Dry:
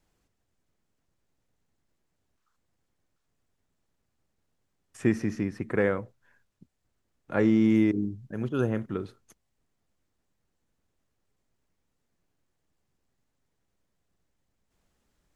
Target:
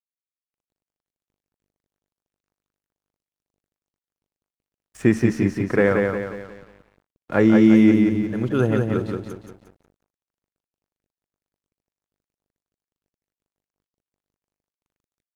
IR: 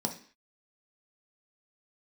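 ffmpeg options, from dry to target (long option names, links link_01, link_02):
-af "aeval=exprs='val(0)+0.000631*(sin(2*PI*50*n/s)+sin(2*PI*2*50*n/s)/2+sin(2*PI*3*50*n/s)/3+sin(2*PI*4*50*n/s)/4+sin(2*PI*5*50*n/s)/5)':channel_layout=same,aecho=1:1:178|356|534|712|890|1068:0.631|0.29|0.134|0.0614|0.0283|0.013,aeval=exprs='sgn(val(0))*max(abs(val(0))-0.00178,0)':channel_layout=same,volume=7dB"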